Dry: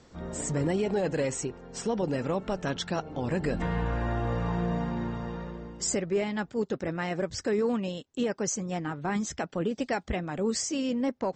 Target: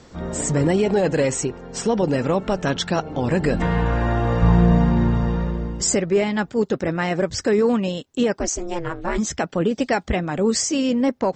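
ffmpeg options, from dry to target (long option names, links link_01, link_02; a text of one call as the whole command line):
ffmpeg -i in.wav -filter_complex "[0:a]asettb=1/sr,asplit=3[link_01][link_02][link_03];[link_01]atrim=end=4.424[link_04];[link_02]atrim=start=4.42:end=5.82,asetpts=PTS-STARTPTS,afade=type=in:duration=0.004:curve=qsin,afade=type=out:start_time=1.396:duration=0.004:curve=qsin,lowshelf=frequency=160:gain=11.5[link_05];[link_03]atrim=start=5.816[link_06];[link_04][link_05]acrossfade=duration=0.004:curve1=hsin:curve2=qsin[link_07];[link_07][link_06]acrossfade=duration=0.004:curve1=qsin:curve2=hsin,asplit=3[link_08][link_09][link_10];[link_08]afade=type=out:start_time=8.38:duration=0.02[link_11];[link_09]aeval=exprs='val(0)*sin(2*PI*170*n/s)':channel_layout=same,afade=type=in:start_time=8.38:duration=0.02,afade=type=out:start_time=9.17:duration=0.02[link_12];[link_10]afade=type=in:start_time=9.17:duration=0.02[link_13];[link_11][link_12][link_13]amix=inputs=3:normalize=0,volume=9dB" out.wav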